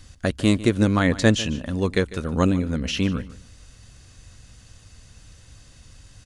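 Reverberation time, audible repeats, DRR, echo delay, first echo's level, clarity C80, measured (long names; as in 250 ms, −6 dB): no reverb audible, 2, no reverb audible, 149 ms, −17.0 dB, no reverb audible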